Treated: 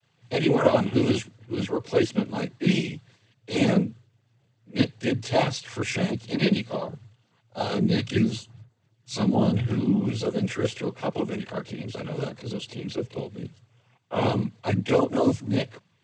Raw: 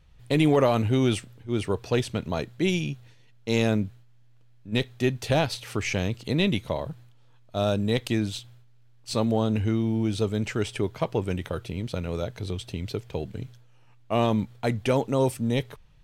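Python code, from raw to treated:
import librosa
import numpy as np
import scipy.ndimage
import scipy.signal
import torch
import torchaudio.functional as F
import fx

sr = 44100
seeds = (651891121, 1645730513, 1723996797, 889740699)

y = fx.vibrato(x, sr, rate_hz=4.0, depth_cents=50.0)
y = fx.chorus_voices(y, sr, voices=6, hz=0.97, base_ms=25, depth_ms=3.0, mix_pct=65)
y = fx.noise_vocoder(y, sr, seeds[0], bands=16)
y = F.gain(torch.from_numpy(y), 3.5).numpy()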